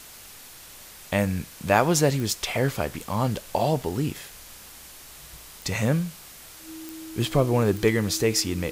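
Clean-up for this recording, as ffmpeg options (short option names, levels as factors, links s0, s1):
-af "adeclick=t=4,bandreject=f=320:w=30,afftdn=nr=25:nf=-45"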